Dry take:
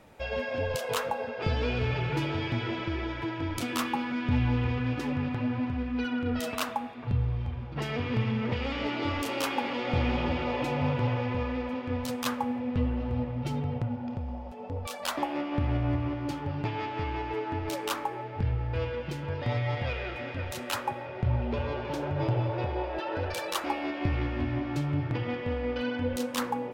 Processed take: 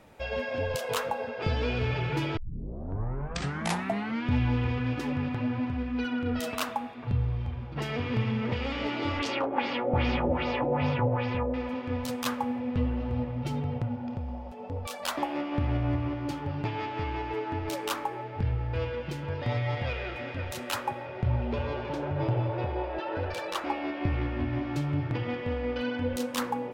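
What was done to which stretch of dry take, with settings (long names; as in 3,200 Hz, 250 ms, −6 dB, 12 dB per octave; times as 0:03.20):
0:02.37: tape start 1.91 s
0:09.19–0:11.54: auto-filter low-pass sine 2.5 Hz 520–6,100 Hz
0:21.89–0:24.53: low-pass filter 3,500 Hz 6 dB per octave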